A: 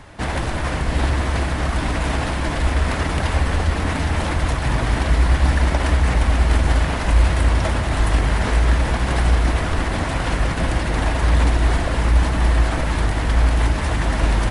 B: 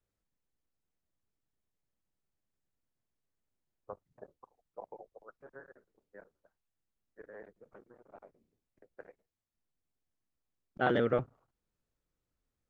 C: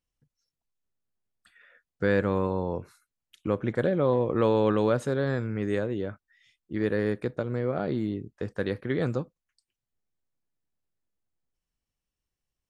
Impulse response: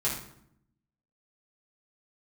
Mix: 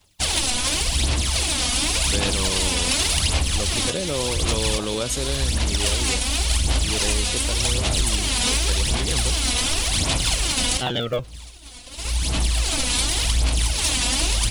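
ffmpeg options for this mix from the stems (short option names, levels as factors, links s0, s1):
-filter_complex "[0:a]aphaser=in_gain=1:out_gain=1:delay=4.1:decay=0.61:speed=0.89:type=sinusoidal,asoftclip=type=hard:threshold=0.944,volume=0.473[s0];[1:a]lowshelf=f=160:g=10,aphaser=in_gain=1:out_gain=1:delay=4:decay=0.56:speed=0.2:type=sinusoidal,volume=1.19,asplit=2[s1][s2];[2:a]adelay=100,volume=0.841[s3];[s2]apad=whole_len=639752[s4];[s0][s4]sidechaincompress=threshold=0.00708:ratio=10:attack=20:release=892[s5];[s5][s3]amix=inputs=2:normalize=0,agate=range=0.0224:threshold=0.0398:ratio=3:detection=peak,acompressor=threshold=0.0794:ratio=2,volume=1[s6];[s1][s6]amix=inputs=2:normalize=0,aexciter=amount=4.5:drive=9.4:freq=2600"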